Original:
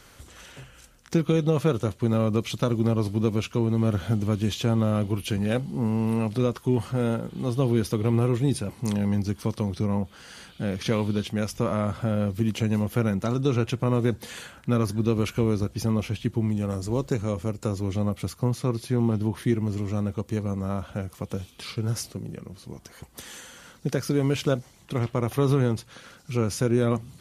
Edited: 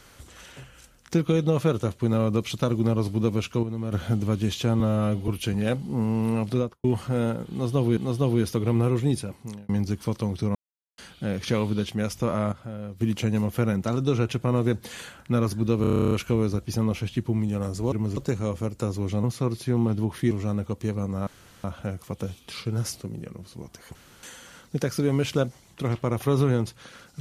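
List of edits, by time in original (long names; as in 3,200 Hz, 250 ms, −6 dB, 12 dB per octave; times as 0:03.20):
0:03.63–0:03.92: clip gain −7.5 dB
0:04.80–0:05.12: time-stretch 1.5×
0:06.37–0:06.68: fade out and dull
0:07.35–0:07.81: repeat, 2 plays
0:08.47–0:09.07: fade out
0:09.93–0:10.36: silence
0:11.90–0:12.39: clip gain −10.5 dB
0:15.19: stutter 0.03 s, 11 plays
0:18.07–0:18.47: remove
0:19.54–0:19.79: move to 0:17.00
0:20.75: splice in room tone 0.37 s
0:23.06–0:23.34: fill with room tone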